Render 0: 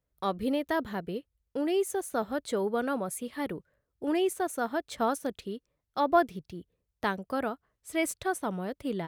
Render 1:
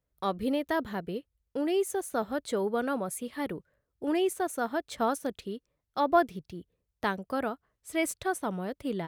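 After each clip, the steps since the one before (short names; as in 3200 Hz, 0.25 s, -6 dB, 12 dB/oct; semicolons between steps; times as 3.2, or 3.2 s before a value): nothing audible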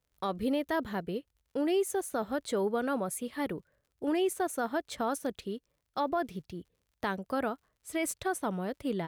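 crackle 60/s -58 dBFS; limiter -21.5 dBFS, peak gain reduction 9.5 dB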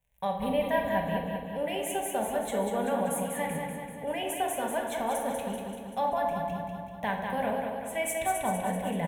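fixed phaser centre 1300 Hz, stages 6; on a send: feedback echo 0.193 s, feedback 58%, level -5 dB; on the sum: shoebox room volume 560 m³, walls mixed, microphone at 1.2 m; gain +3 dB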